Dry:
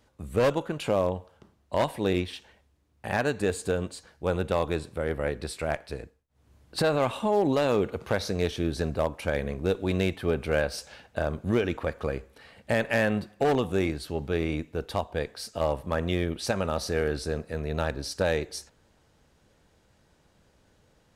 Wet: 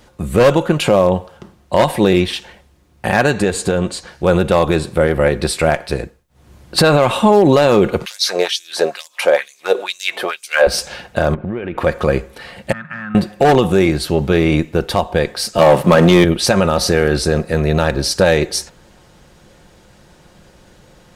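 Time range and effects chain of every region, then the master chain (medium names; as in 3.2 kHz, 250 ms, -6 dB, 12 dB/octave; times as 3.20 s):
3.32–4.25 s: treble shelf 11 kHz -9.5 dB + compression 3:1, threshold -28 dBFS + tape noise reduction on one side only encoder only
8.05–10.67 s: compression 1.5:1, threshold -33 dBFS + LFO high-pass sine 2.2 Hz 460–6900 Hz
11.34–11.78 s: low-pass 2.6 kHz 24 dB/octave + compression 10:1, threshold -36 dBFS
12.72–13.15 s: compression 2.5:1, threshold -26 dBFS + two resonant band-passes 470 Hz, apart 3 oct
15.58–16.24 s: high-pass 130 Hz 24 dB/octave + waveshaping leveller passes 2
whole clip: comb 5.6 ms, depth 35%; loudness maximiser +17.5 dB; trim -1 dB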